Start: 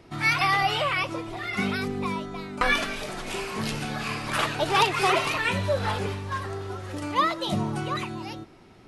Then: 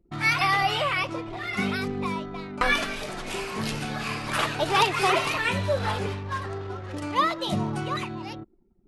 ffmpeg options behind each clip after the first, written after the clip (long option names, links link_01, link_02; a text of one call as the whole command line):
ffmpeg -i in.wav -af "anlmdn=0.251" out.wav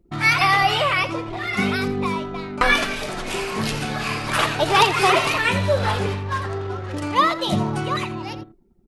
ffmpeg -i in.wav -af "aecho=1:1:84:0.188,volume=5.5dB" out.wav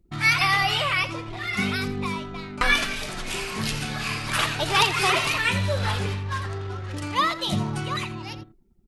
ffmpeg -i in.wav -af "equalizer=frequency=530:width_type=o:width=2.8:gain=-8.5" out.wav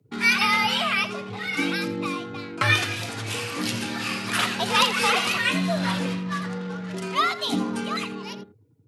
ffmpeg -i in.wav -af "afreqshift=86" out.wav